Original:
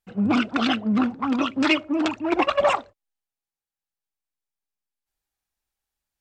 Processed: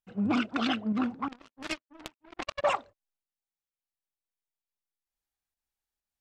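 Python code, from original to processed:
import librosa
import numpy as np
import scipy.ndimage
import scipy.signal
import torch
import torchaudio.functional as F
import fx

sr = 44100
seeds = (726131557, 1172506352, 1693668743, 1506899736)

y = fx.volume_shaper(x, sr, bpm=130, per_beat=1, depth_db=-6, release_ms=180.0, shape='fast start')
y = fx.power_curve(y, sr, exponent=3.0, at=(1.28, 2.64))
y = F.gain(torch.from_numpy(y), -6.5).numpy()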